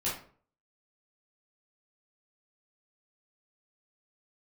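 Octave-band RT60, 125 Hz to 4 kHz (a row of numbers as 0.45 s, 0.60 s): 0.55 s, 0.50 s, 0.50 s, 0.45 s, 0.40 s, 0.30 s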